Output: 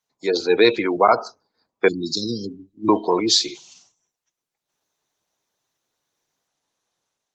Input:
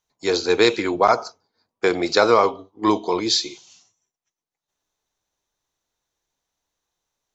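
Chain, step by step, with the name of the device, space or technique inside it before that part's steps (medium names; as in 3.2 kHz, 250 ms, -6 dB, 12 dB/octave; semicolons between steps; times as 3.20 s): 1.88–2.89 s: inverse Chebyshev band-stop 660–1800 Hz, stop band 60 dB; noise-suppressed video call (high-pass 110 Hz 24 dB/octave; spectral gate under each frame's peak -25 dB strong; level rider gain up to 5.5 dB; Opus 20 kbps 48 kHz)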